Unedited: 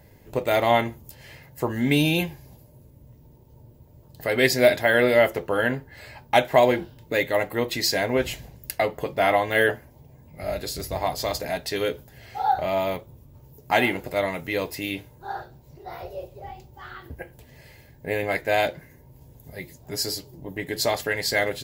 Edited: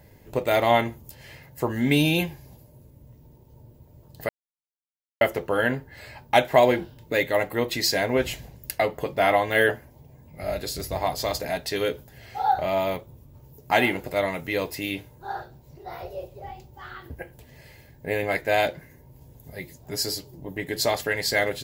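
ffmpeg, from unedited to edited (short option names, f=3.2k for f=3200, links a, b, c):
-filter_complex "[0:a]asplit=3[a][b][c];[a]atrim=end=4.29,asetpts=PTS-STARTPTS,afade=t=out:st=4.286:d=0.004:c=hsin[d];[b]atrim=start=4.29:end=5.21,asetpts=PTS-STARTPTS,volume=0[e];[c]atrim=start=5.21,asetpts=PTS-STARTPTS,afade=t=in:d=0.004:c=hsin[f];[d][e][f]concat=n=3:v=0:a=1"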